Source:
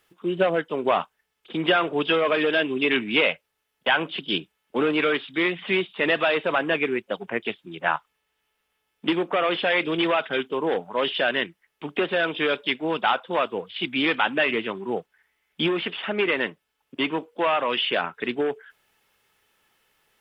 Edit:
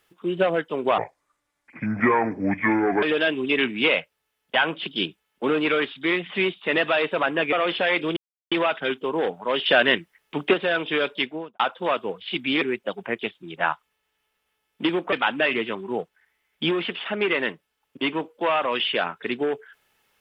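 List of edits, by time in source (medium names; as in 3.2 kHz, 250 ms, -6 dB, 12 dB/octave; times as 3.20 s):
0.98–2.35 s: speed 67%
6.85–9.36 s: move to 14.10 s
10.00 s: insert silence 0.35 s
11.14–12.02 s: gain +5.5 dB
12.67–13.08 s: studio fade out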